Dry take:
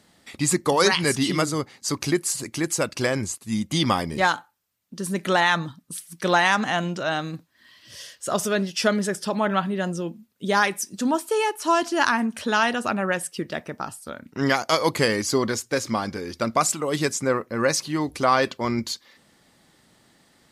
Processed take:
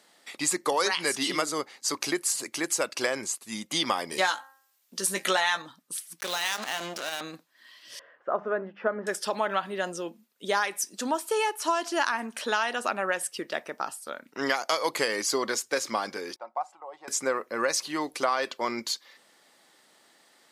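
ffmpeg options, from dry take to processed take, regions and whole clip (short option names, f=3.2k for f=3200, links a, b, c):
-filter_complex "[0:a]asettb=1/sr,asplit=3[a][b][c];[a]atrim=end=4.114[d];[b]atrim=start=4.11:end=5.62,asetpts=PTS-STARTPTS,afade=t=in:d=0.004:c=qsin,afade=t=out:st=1.506:d=0.004:c=qsin,highshelf=f=2.3k:g=9,asplit=2[e][f];[f]adelay=16,volume=-7dB[g];[e][g]amix=inputs=2:normalize=0,atrim=end_sample=66591,bandreject=f=267.8:t=h:w=4,bandreject=f=535.6:t=h:w=4,bandreject=f=803.4:t=h:w=4,bandreject=f=1.0712k:t=h:w=4,bandreject=f=1.339k:t=h:w=4,bandreject=f=1.6068k:t=h:w=4,bandreject=f=1.8746k:t=h:w=4[h];[c]atrim=start=5.616[i];[d][h]acrossfade=d=0.004:c1=hsin:c2=qsin[j];[j][i]acrossfade=d=0.004:c1=qsin:c2=hsin,asettb=1/sr,asplit=3[k][l][m];[k]atrim=end=6.204[n];[l]atrim=start=6.2:end=7.21,asetpts=PTS-STARTPTS,afade=t=in:d=0.004:c=qsin,afade=t=out:st=1.006:d=0.004:c=qsin,acrossover=split=130|3000[o][p][q];[p]acompressor=threshold=-31dB:ratio=4:attack=3.2:release=140:knee=2.83:detection=peak[r];[o][r][q]amix=inputs=3:normalize=0,asplit=2[s][t];[t]adelay=24,volume=-11.5dB[u];[s][u]amix=inputs=2:normalize=0,atrim=end_sample=44541,acrusher=bits=4:mix=0:aa=0.5[v];[m]atrim=start=7.206[w];[n][v]acrossfade=d=0.004:c1=hsin:c2=qsin[x];[x][w]acrossfade=d=0.004:c1=qsin:c2=hsin,asettb=1/sr,asplit=3[y][z][aa];[y]atrim=end=7.994[ab];[z]atrim=start=7.99:end=9.07,asetpts=PTS-STARTPTS,afade=t=in:d=0.004:c=qsin,afade=t=out:st=1.076:d=0.004:c=qsin,bandreject=f=50:t=h:w=6,bandreject=f=100:t=h:w=6,bandreject=f=150:t=h:w=6,bandreject=f=200:t=h:w=6,bandreject=f=250:t=h:w=6,bandreject=f=300:t=h:w=6,acompressor=mode=upward:threshold=-37dB:ratio=2.5:attack=3.2:release=140:knee=2.83:detection=peak,lowpass=f=1.5k:w=0.5412,lowpass=f=1.5k:w=1.3066[ac];[aa]atrim=start=9.066[ad];[ab][ac]acrossfade=d=0.004:c1=hsin:c2=qsin[ae];[ae][ad]acrossfade=d=0.004:c1=qsin:c2=hsin,asettb=1/sr,asplit=3[af][ag][ah];[af]atrim=end=16.364[ai];[ag]atrim=start=16.36:end=17.08,asetpts=PTS-STARTPTS,afade=t=in:d=0.004:c=qsin,afade=t=out:st=0.716:d=0.004:c=qsin,bandpass=f=820:t=q:w=8.1,aecho=1:1:5.5:0.44,atrim=end_sample=31752[aj];[ah]atrim=start=17.076[ak];[ai][aj]acrossfade=d=0.004:c1=hsin:c2=qsin[al];[al][ak]acrossfade=d=0.004:c1=qsin:c2=hsin,highpass=440,acompressor=threshold=-22dB:ratio=5"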